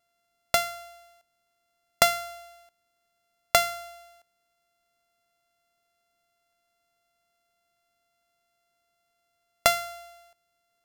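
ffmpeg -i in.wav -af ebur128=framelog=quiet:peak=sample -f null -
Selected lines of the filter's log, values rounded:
Integrated loudness:
  I:         -25.6 LUFS
  Threshold: -38.7 LUFS
Loudness range:
  LRA:         3.9 LU
  Threshold: -51.8 LUFS
  LRA low:   -33.4 LUFS
  LRA high:  -29.5 LUFS
Sample peak:
  Peak:       -1.8 dBFS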